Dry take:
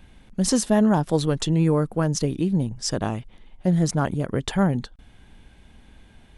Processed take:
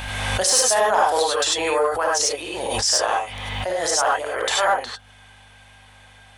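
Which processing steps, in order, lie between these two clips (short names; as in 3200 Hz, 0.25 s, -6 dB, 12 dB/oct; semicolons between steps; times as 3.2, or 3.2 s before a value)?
HPF 620 Hz 24 dB/oct; hum 50 Hz, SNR 28 dB; non-linear reverb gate 0.12 s rising, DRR -4.5 dB; in parallel at -4 dB: hard clip -18 dBFS, distortion -17 dB; on the sum: backwards sustainer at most 28 dB/s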